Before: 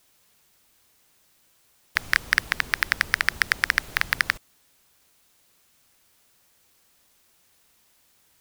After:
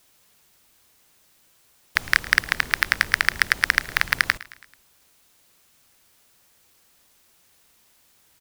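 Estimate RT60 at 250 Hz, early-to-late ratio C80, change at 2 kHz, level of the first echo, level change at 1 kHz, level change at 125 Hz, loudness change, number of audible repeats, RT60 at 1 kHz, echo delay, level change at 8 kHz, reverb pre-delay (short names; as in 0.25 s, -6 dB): none, none, +2.5 dB, -19.5 dB, +2.5 dB, +2.5 dB, +2.5 dB, 3, none, 0.109 s, +2.5 dB, none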